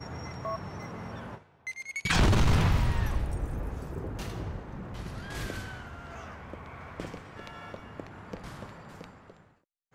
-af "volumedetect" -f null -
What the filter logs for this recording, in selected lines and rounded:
mean_volume: -31.7 dB
max_volume: -14.0 dB